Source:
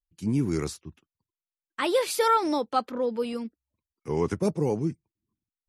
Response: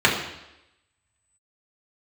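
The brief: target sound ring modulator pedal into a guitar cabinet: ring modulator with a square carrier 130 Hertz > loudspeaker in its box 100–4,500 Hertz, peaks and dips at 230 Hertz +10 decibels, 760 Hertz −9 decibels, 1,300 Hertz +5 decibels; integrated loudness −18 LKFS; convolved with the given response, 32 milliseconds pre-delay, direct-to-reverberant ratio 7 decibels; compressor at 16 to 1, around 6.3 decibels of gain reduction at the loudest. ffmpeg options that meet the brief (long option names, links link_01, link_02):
-filter_complex "[0:a]acompressor=threshold=-24dB:ratio=16,asplit=2[link_01][link_02];[1:a]atrim=start_sample=2205,adelay=32[link_03];[link_02][link_03]afir=irnorm=-1:irlink=0,volume=-28dB[link_04];[link_01][link_04]amix=inputs=2:normalize=0,aeval=exprs='val(0)*sgn(sin(2*PI*130*n/s))':channel_layout=same,highpass=100,equalizer=frequency=230:width_type=q:width=4:gain=10,equalizer=frequency=760:width_type=q:width=4:gain=-9,equalizer=frequency=1300:width_type=q:width=4:gain=5,lowpass=frequency=4500:width=0.5412,lowpass=frequency=4500:width=1.3066,volume=11.5dB"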